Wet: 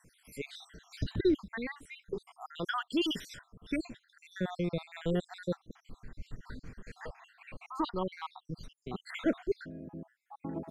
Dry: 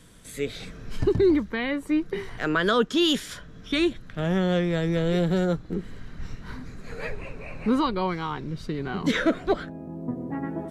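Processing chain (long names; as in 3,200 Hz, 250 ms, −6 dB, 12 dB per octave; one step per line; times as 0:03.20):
time-frequency cells dropped at random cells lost 68%
0:00.70–0:01.48: parametric band 4,400 Hz +8.5 dB 1.3 octaves
level −6 dB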